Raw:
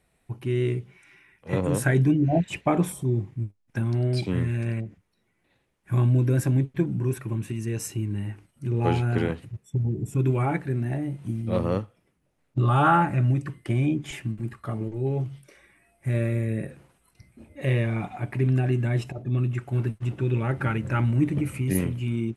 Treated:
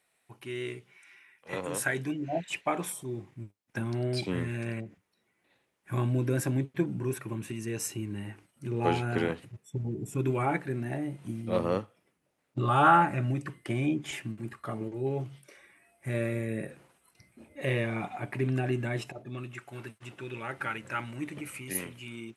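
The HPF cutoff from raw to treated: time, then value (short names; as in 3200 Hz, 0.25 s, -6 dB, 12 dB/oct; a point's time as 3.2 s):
HPF 6 dB/oct
2.88 s 1100 Hz
3.79 s 320 Hz
18.8 s 320 Hz
19.61 s 1300 Hz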